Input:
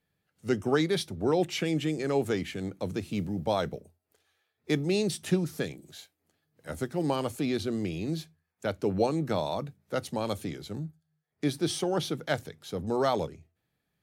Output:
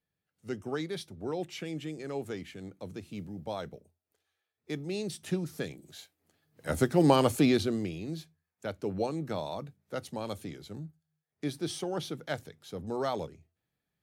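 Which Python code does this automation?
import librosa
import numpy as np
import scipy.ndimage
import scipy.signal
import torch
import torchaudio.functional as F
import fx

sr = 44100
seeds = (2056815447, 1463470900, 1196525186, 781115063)

y = fx.gain(x, sr, db=fx.line((4.76, -9.0), (5.97, -1.5), (6.75, 6.5), (7.43, 6.5), (8.0, -5.5)))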